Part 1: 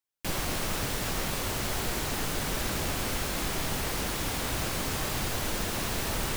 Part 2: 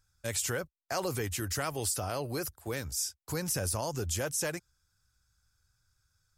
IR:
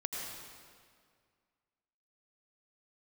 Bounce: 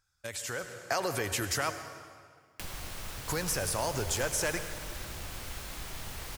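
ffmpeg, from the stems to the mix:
-filter_complex "[0:a]acrossover=split=120[link_01][link_02];[link_02]acompressor=threshold=-46dB:ratio=4[link_03];[link_01][link_03]amix=inputs=2:normalize=0,adelay=2350,volume=-5dB[link_04];[1:a]acompressor=threshold=-34dB:ratio=6,highshelf=frequency=5200:gain=-7.5,volume=-0.5dB,asplit=3[link_05][link_06][link_07];[link_05]atrim=end=1.71,asetpts=PTS-STARTPTS,afade=type=out:start_time=1.706:duration=0.004:curve=hsin[link_08];[link_06]atrim=start=1.71:end=3.13,asetpts=PTS-STARTPTS,volume=0[link_09];[link_07]atrim=start=3.13,asetpts=PTS-STARTPTS,afade=type=in:duration=0.004:curve=hsin[link_10];[link_08][link_09][link_10]concat=n=3:v=0:a=1,asplit=2[link_11][link_12];[link_12]volume=-7dB[link_13];[2:a]atrim=start_sample=2205[link_14];[link_13][link_14]afir=irnorm=-1:irlink=0[link_15];[link_04][link_11][link_15]amix=inputs=3:normalize=0,lowshelf=frequency=410:gain=-10.5,dynaudnorm=framelen=190:gausssize=7:maxgain=8.5dB"

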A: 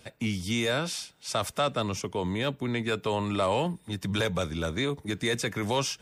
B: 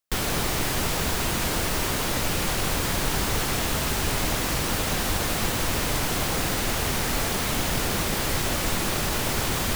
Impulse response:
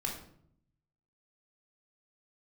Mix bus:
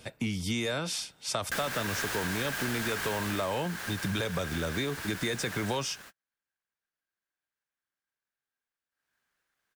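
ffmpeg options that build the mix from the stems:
-filter_complex "[0:a]volume=2.5dB,asplit=2[link_01][link_02];[1:a]aeval=exprs='val(0)*sin(2*PI*1600*n/s)':channel_layout=same,adelay=1400,volume=12dB,afade=type=out:start_time=3.11:duration=0.52:silence=0.375837,afade=type=out:start_time=5.64:duration=0.27:silence=0.266073,afade=type=in:start_time=8.91:duration=0.24:silence=0.223872[link_03];[link_02]apad=whole_len=491801[link_04];[link_03][link_04]sidechaingate=range=-45dB:threshold=-50dB:ratio=16:detection=peak[link_05];[link_01][link_05]amix=inputs=2:normalize=0,acompressor=threshold=-28dB:ratio=6"

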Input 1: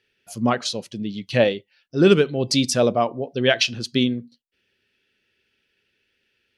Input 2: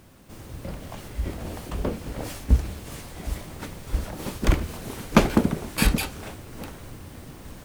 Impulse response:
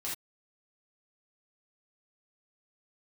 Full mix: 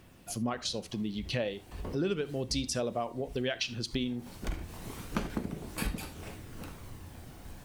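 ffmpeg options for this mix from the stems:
-filter_complex "[0:a]acompressor=threshold=-25dB:ratio=2,volume=1dB,asplit=3[link_01][link_02][link_03];[link_02]volume=-15.5dB[link_04];[1:a]aphaser=in_gain=1:out_gain=1:delay=1.4:decay=0.26:speed=0.34:type=triangular,volume=-9dB,asplit=2[link_05][link_06];[link_06]volume=-7.5dB[link_07];[link_03]apad=whole_len=337231[link_08];[link_05][link_08]sidechaincompress=threshold=-44dB:ratio=3:attack=16:release=310[link_09];[2:a]atrim=start_sample=2205[link_10];[link_04][link_07]amix=inputs=2:normalize=0[link_11];[link_11][link_10]afir=irnorm=-1:irlink=0[link_12];[link_01][link_09][link_12]amix=inputs=3:normalize=0,acompressor=threshold=-37dB:ratio=2"

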